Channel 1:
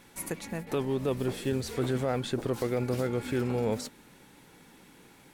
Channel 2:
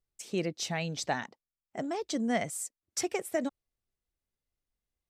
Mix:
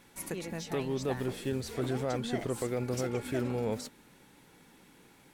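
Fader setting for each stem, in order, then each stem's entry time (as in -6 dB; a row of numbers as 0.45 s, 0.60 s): -3.5 dB, -9.5 dB; 0.00 s, 0.00 s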